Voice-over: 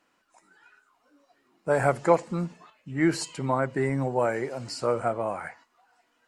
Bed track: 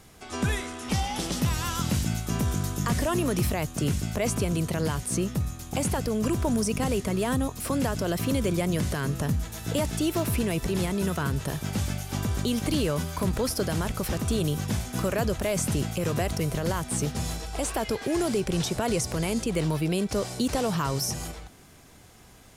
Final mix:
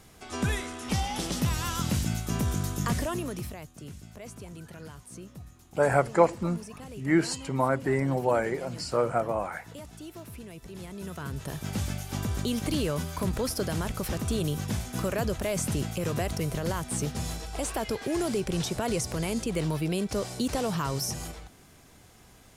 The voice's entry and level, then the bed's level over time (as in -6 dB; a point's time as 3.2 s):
4.10 s, 0.0 dB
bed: 2.9 s -1.5 dB
3.77 s -17 dB
10.62 s -17 dB
11.72 s -2.5 dB